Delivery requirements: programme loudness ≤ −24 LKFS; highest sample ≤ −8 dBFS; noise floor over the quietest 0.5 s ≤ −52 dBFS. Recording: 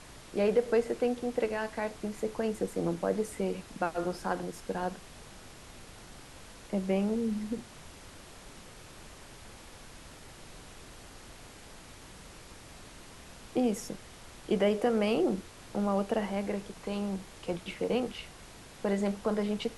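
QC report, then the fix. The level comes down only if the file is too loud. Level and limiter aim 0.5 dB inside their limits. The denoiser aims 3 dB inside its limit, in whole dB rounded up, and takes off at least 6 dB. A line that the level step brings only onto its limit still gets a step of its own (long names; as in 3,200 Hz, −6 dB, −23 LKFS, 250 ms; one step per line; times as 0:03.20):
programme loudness −32.5 LKFS: in spec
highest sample −15.5 dBFS: in spec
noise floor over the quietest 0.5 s −50 dBFS: out of spec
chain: broadband denoise 6 dB, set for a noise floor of −50 dBFS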